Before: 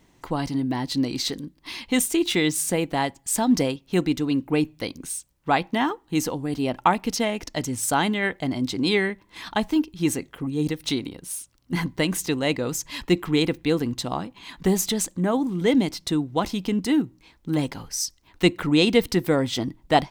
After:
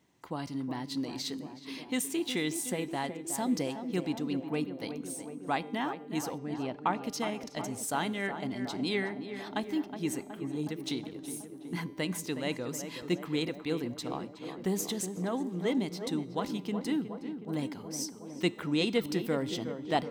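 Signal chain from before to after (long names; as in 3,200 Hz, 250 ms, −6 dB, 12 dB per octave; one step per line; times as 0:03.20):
high-pass filter 100 Hz
tuned comb filter 200 Hz, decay 1.1 s, mix 50%
0:06.38–0:07.03: high-frequency loss of the air 85 metres
tape delay 368 ms, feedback 83%, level −8 dB, low-pass 1,500 Hz
level −4.5 dB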